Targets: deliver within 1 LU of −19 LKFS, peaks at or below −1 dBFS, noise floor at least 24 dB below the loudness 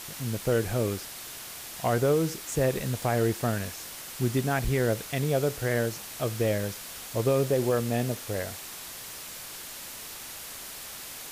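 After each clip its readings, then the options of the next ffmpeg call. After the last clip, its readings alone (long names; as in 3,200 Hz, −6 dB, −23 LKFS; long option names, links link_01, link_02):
background noise floor −41 dBFS; target noise floor −54 dBFS; integrated loudness −29.5 LKFS; sample peak −15.0 dBFS; target loudness −19.0 LKFS
→ -af "afftdn=noise_reduction=13:noise_floor=-41"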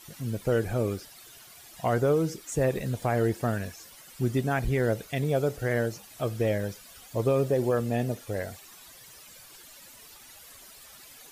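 background noise floor −50 dBFS; target noise floor −53 dBFS
→ -af "afftdn=noise_reduction=6:noise_floor=-50"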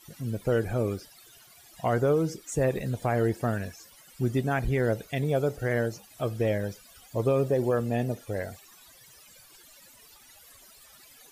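background noise floor −54 dBFS; integrated loudness −28.5 LKFS; sample peak −16.0 dBFS; target loudness −19.0 LKFS
→ -af "volume=9.5dB"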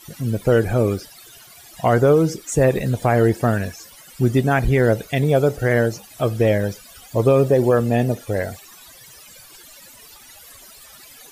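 integrated loudness −19.0 LKFS; sample peak −6.5 dBFS; background noise floor −45 dBFS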